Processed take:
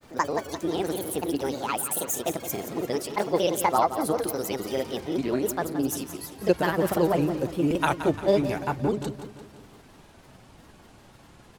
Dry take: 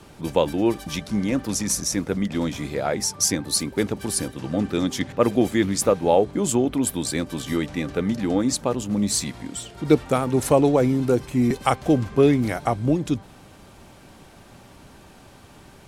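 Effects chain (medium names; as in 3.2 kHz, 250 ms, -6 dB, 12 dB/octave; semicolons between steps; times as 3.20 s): gliding tape speed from 173% -> 101%; granulator, spray 32 ms, pitch spread up and down by 3 st; on a send: feedback delay 173 ms, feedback 51%, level -11 dB; on the sum: trim -3.5 dB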